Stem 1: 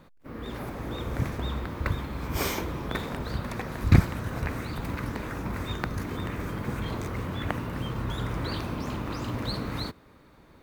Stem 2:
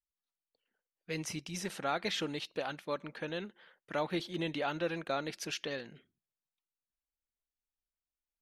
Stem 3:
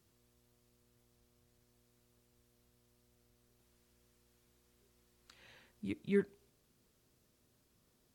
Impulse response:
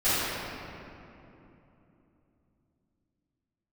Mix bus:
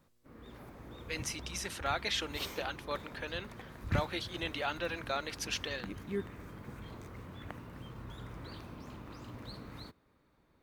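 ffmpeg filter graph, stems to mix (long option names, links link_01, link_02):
-filter_complex "[0:a]volume=-15dB[link_01];[1:a]highpass=frequency=920:poles=1,volume=3dB[link_02];[2:a]acontrast=51,volume=-11dB[link_03];[link_01][link_02][link_03]amix=inputs=3:normalize=0"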